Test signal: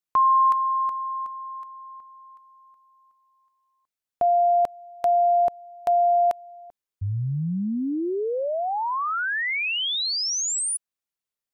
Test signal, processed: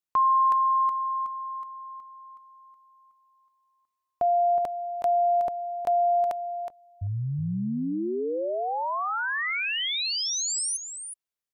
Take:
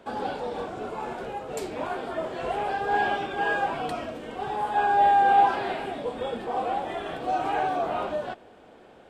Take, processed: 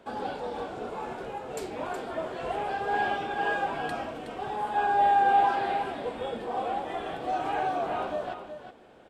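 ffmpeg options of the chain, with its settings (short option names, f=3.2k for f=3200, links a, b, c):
-af "aecho=1:1:369:0.355,volume=-3dB"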